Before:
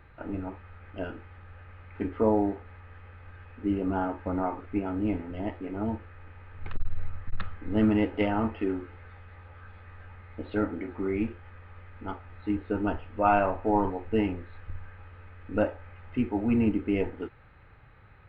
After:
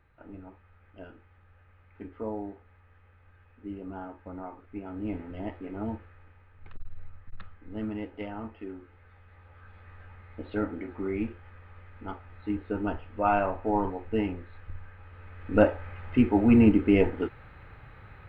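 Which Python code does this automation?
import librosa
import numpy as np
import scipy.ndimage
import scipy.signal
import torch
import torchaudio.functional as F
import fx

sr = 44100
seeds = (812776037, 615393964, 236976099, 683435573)

y = fx.gain(x, sr, db=fx.line((4.67, -11.0), (5.23, -3.0), (5.93, -3.0), (6.54, -11.0), (8.72, -11.0), (9.9, -2.0), (15.0, -2.0), (15.63, 6.0)))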